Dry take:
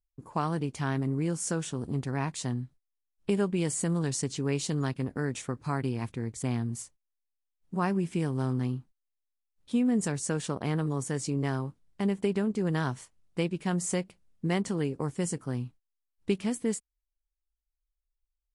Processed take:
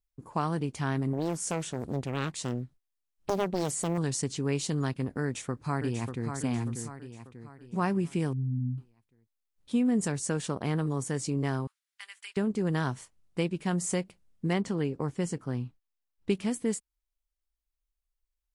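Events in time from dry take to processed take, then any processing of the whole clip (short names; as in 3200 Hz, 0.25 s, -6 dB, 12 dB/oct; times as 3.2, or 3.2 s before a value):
1.13–3.98 Doppler distortion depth 0.9 ms
5.22–6.32 echo throw 0.59 s, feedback 45%, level -6.5 dB
8.33–8.78 spectral contrast raised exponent 3.9
11.67–12.37 HPF 1500 Hz 24 dB/oct
14.53–16.3 bell 9800 Hz -8.5 dB 1.1 oct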